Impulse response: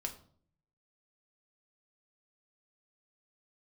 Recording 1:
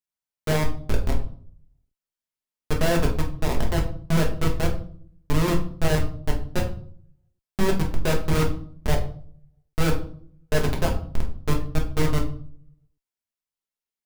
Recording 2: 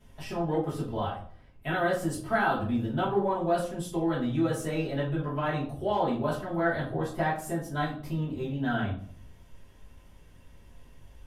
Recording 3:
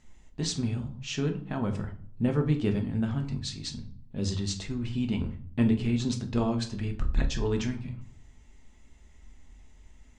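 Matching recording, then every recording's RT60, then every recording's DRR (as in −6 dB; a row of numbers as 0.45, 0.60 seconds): 3; 0.55, 0.55, 0.55 seconds; −0.5, −10.0, 3.5 decibels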